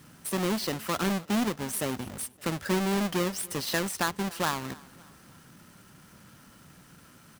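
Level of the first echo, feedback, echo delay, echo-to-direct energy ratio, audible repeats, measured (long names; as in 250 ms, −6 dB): −23.0 dB, 45%, 283 ms, −22.0 dB, 2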